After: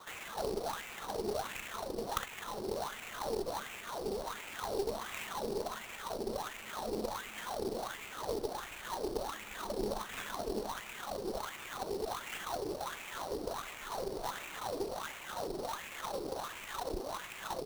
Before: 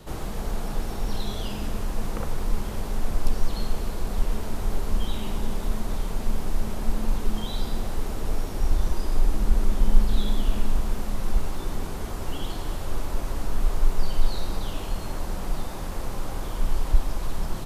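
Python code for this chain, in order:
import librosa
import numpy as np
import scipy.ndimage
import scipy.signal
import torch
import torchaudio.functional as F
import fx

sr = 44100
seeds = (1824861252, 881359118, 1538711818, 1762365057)

y = fx.dereverb_blind(x, sr, rt60_s=0.61)
y = fx.wah_lfo(y, sr, hz=1.4, low_hz=390.0, high_hz=2500.0, q=5.5)
y = fx.cheby_harmonics(y, sr, harmonics=(4,), levels_db=(-16,), full_scale_db=-31.0)
y = fx.sample_hold(y, sr, seeds[0], rate_hz=5000.0, jitter_pct=20)
y = F.gain(torch.from_numpy(y), 10.5).numpy()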